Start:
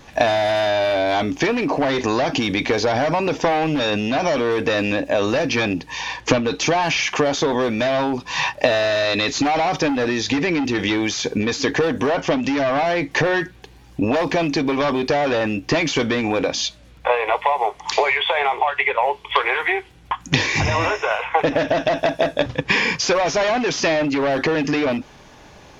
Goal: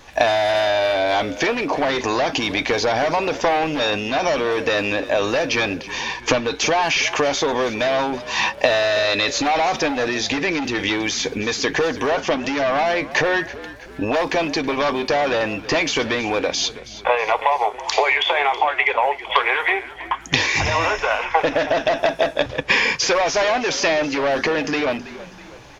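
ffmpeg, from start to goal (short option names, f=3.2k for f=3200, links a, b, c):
-filter_complex "[0:a]equalizer=f=170:t=o:w=1.9:g=-9,asplit=5[a][b][c][d][e];[b]adelay=324,afreqshift=-55,volume=-16dB[f];[c]adelay=648,afreqshift=-110,volume=-22dB[g];[d]adelay=972,afreqshift=-165,volume=-28dB[h];[e]adelay=1296,afreqshift=-220,volume=-34.1dB[i];[a][f][g][h][i]amix=inputs=5:normalize=0,volume=1.5dB"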